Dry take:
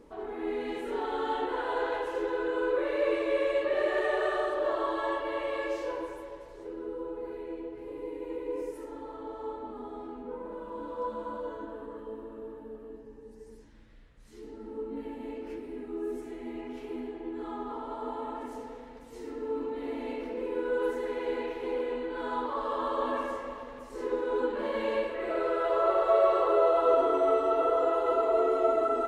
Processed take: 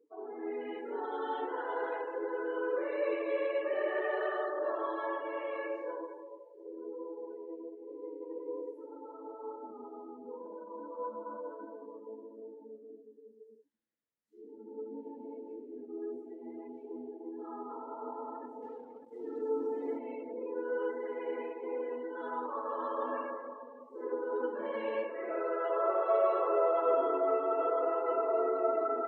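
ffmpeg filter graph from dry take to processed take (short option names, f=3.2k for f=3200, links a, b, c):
-filter_complex "[0:a]asettb=1/sr,asplit=3[a][b][c];[a]atrim=end=18.624[d];[b]atrim=start=18.62:end=19.98,asetpts=PTS-STARTPTS,afade=t=in:d=0.004:c=qsin,afade=t=out:st=1.356:d=0.004:c=qsin,lowshelf=f=280:g=9.5,aecho=1:1:2.4:0.38,atrim=end_sample=59976,acrusher=bits=6:mix=0:aa=0.5[e];[c]atrim=start=19.976[f];[d][e]acrossfade=d=0.004:c1=hsin:c2=qsin[g];[g][f]acrossfade=d=0.004:c1=qsin:c2=hsin,highpass=230,afftdn=nr=28:nf=-42,volume=-4.5dB"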